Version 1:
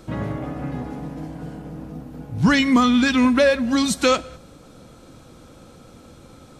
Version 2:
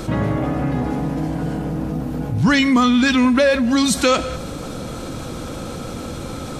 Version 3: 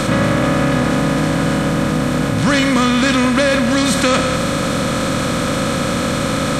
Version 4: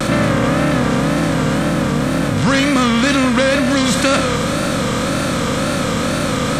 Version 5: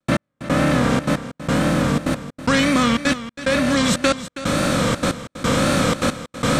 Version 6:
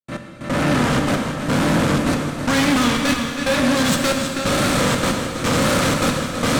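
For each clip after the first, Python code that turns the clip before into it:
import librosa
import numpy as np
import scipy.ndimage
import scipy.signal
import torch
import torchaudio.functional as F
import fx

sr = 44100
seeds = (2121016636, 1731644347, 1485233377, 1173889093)

y1 = fx.env_flatten(x, sr, amount_pct=50)
y2 = fx.bin_compress(y1, sr, power=0.4)
y2 = y2 * librosa.db_to_amplitude(-3.0)
y3 = fx.wow_flutter(y2, sr, seeds[0], rate_hz=2.1, depth_cents=110.0)
y4 = fx.rider(y3, sr, range_db=10, speed_s=2.0)
y4 = fx.step_gate(y4, sr, bpm=182, pattern='.x....xxxxxx', floor_db=-60.0, edge_ms=4.5)
y4 = y4 + 10.0 ** (-13.5 / 20.0) * np.pad(y4, (int(323 * sr / 1000.0), 0))[:len(y4)]
y4 = y4 * librosa.db_to_amplitude(-2.0)
y5 = fx.fade_in_head(y4, sr, length_s=0.86)
y5 = fx.tube_stage(y5, sr, drive_db=24.0, bias=0.5)
y5 = fx.rev_plate(y5, sr, seeds[1], rt60_s=2.5, hf_ratio=0.95, predelay_ms=0, drr_db=3.0)
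y5 = y5 * librosa.db_to_amplitude(7.5)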